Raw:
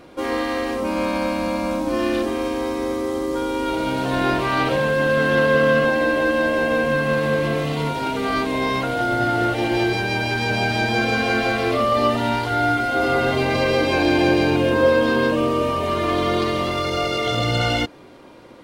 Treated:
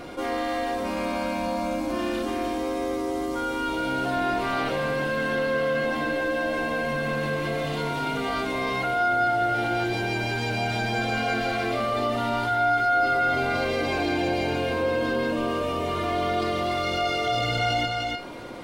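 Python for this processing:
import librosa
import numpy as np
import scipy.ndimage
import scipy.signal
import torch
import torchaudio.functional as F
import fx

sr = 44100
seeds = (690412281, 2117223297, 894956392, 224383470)

y = fx.comb_fb(x, sr, f0_hz=710.0, decay_s=0.21, harmonics='all', damping=0.0, mix_pct=80)
y = y + 10.0 ** (-8.0 / 20.0) * np.pad(y, (int(299 * sr / 1000.0), 0))[:len(y)]
y = fx.env_flatten(y, sr, amount_pct=50)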